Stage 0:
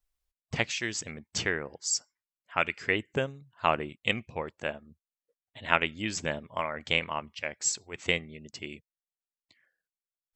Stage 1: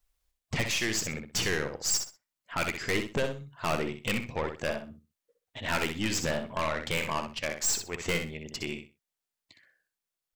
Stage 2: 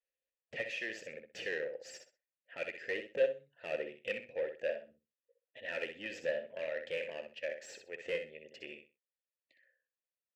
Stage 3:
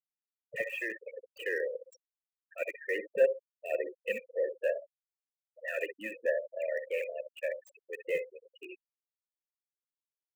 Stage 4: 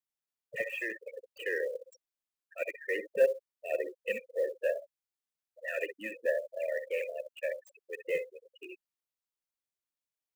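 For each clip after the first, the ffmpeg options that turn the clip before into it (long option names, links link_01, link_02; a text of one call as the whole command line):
ffmpeg -i in.wav -filter_complex "[0:a]aeval=exprs='(tanh(39.8*val(0)+0.45)-tanh(0.45))/39.8':channel_layout=same,asplit=2[link_01][link_02];[link_02]aecho=0:1:63|126|189:0.447|0.0983|0.0216[link_03];[link_01][link_03]amix=inputs=2:normalize=0,volume=7.5dB" out.wav
ffmpeg -i in.wav -filter_complex "[0:a]asplit=3[link_01][link_02][link_03];[link_01]bandpass=frequency=530:width_type=q:width=8,volume=0dB[link_04];[link_02]bandpass=frequency=1840:width_type=q:width=8,volume=-6dB[link_05];[link_03]bandpass=frequency=2480:width_type=q:width=8,volume=-9dB[link_06];[link_04][link_05][link_06]amix=inputs=3:normalize=0,aeval=exprs='0.0596*(cos(1*acos(clip(val(0)/0.0596,-1,1)))-cos(1*PI/2))+0.00668*(cos(3*acos(clip(val(0)/0.0596,-1,1)))-cos(3*PI/2))':channel_layout=same,volume=5dB" out.wav
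ffmpeg -i in.wav -filter_complex "[0:a]afftfilt=real='re*gte(hypot(re,im),0.0178)':imag='im*gte(hypot(re,im),0.0178)':win_size=1024:overlap=0.75,acrossover=split=210|410|3400[link_01][link_02][link_03][link_04];[link_04]aeval=exprs='(mod(841*val(0)+1,2)-1)/841':channel_layout=same[link_05];[link_01][link_02][link_03][link_05]amix=inputs=4:normalize=0,volume=5dB" out.wav
ffmpeg -i in.wav -af "acrusher=bits=8:mode=log:mix=0:aa=0.000001" out.wav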